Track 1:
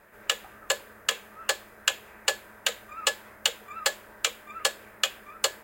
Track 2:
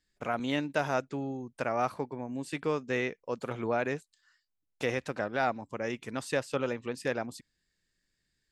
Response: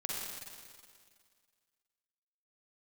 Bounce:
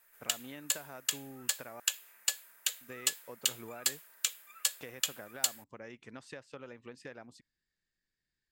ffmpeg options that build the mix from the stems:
-filter_complex "[0:a]aderivative,volume=-1dB[link_01];[1:a]lowpass=7800,equalizer=frequency=1700:width=1.5:gain=3,acompressor=threshold=-33dB:ratio=6,volume=-10dB,asplit=3[link_02][link_03][link_04];[link_02]atrim=end=1.8,asetpts=PTS-STARTPTS,afade=type=out:start_time=1.796:duration=0.004:curve=hsin[link_05];[link_03]atrim=start=1.8:end=2.81,asetpts=PTS-STARTPTS,volume=0[link_06];[link_04]atrim=start=2.81,asetpts=PTS-STARTPTS,afade=type=in:duration=0.004:curve=hsin[link_07];[link_05][link_06][link_07]concat=n=3:v=0:a=1[link_08];[link_01][link_08]amix=inputs=2:normalize=0"

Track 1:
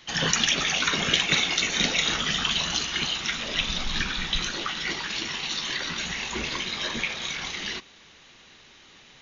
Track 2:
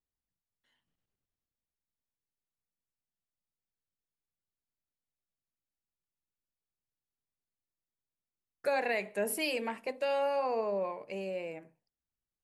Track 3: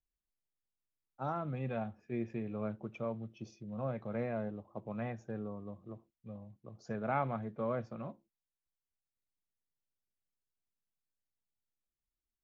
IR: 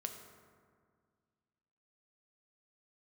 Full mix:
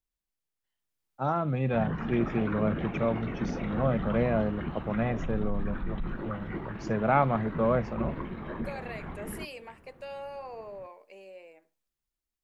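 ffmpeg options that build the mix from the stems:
-filter_complex "[0:a]lowpass=frequency=1300:width=0.5412,lowpass=frequency=1300:width=1.3066,equalizer=frequency=1000:width=0.4:gain=-11,alimiter=level_in=7dB:limit=-24dB:level=0:latency=1:release=45,volume=-7dB,adelay=1650,volume=-2dB[link_01];[1:a]highpass=360,volume=-17.5dB[link_02];[2:a]volume=1.5dB[link_03];[link_01][link_02][link_03]amix=inputs=3:normalize=0,dynaudnorm=framelen=290:gausssize=7:maxgain=8.5dB"

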